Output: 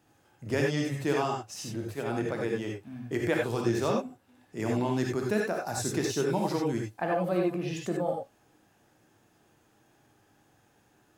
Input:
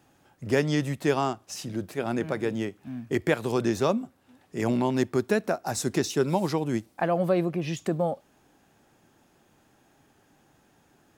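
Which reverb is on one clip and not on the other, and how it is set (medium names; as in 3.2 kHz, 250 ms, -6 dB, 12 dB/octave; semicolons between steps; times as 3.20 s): gated-style reverb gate 110 ms rising, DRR -0.5 dB; trim -5.5 dB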